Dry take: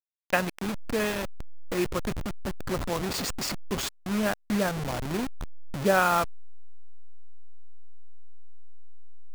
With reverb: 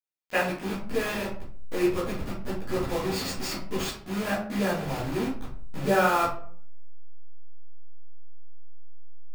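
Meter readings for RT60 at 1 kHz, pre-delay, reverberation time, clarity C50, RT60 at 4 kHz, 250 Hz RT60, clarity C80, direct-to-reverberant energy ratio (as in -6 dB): 0.45 s, 10 ms, 0.50 s, 4.5 dB, 0.30 s, 0.65 s, 9.5 dB, -11.5 dB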